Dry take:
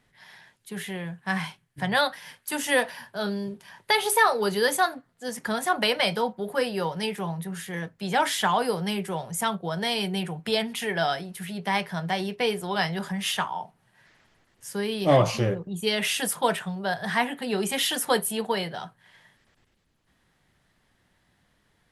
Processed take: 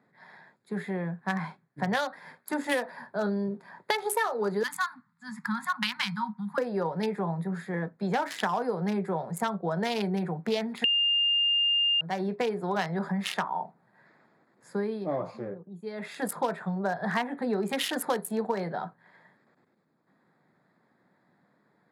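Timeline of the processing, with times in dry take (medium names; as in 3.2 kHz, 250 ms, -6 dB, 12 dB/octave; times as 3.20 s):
4.63–6.58 s: elliptic band-stop 210–990 Hz
10.84–12.01 s: bleep 2.81 kHz -12 dBFS
14.68–16.36 s: dip -13.5 dB, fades 0.42 s
whole clip: local Wiener filter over 15 samples; high-pass 160 Hz 24 dB/octave; compression 6:1, threshold -29 dBFS; trim +4 dB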